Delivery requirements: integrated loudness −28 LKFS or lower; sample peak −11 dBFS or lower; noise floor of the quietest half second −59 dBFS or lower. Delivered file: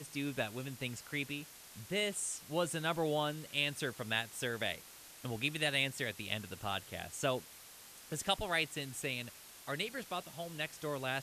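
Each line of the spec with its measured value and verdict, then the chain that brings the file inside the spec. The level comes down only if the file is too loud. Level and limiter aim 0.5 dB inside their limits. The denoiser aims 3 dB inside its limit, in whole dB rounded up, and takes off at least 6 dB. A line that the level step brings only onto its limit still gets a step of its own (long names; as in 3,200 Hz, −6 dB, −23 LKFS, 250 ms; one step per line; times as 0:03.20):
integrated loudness −37.0 LKFS: in spec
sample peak −17.0 dBFS: in spec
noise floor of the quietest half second −55 dBFS: out of spec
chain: broadband denoise 7 dB, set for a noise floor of −55 dBFS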